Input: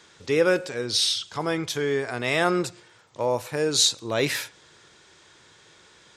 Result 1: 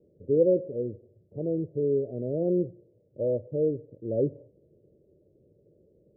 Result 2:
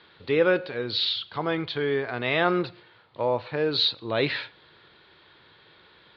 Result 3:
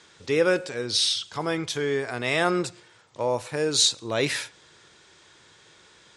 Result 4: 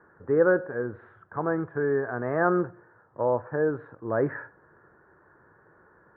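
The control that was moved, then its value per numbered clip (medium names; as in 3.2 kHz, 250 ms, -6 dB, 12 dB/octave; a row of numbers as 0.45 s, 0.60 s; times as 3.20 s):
Chebyshev low-pass, frequency: 590 Hz, 4.4 kHz, 11 kHz, 1.7 kHz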